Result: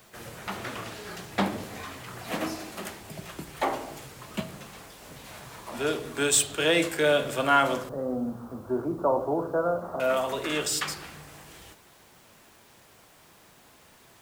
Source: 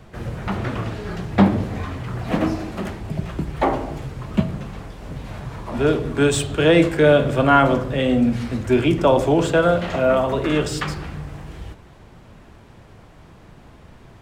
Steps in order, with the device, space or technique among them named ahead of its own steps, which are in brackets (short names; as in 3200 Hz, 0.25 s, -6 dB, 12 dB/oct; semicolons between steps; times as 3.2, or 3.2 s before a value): 7.89–10 steep low-pass 1300 Hz 48 dB/oct; turntable without a phono preamp (RIAA curve recording; white noise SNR 33 dB); gain -6.5 dB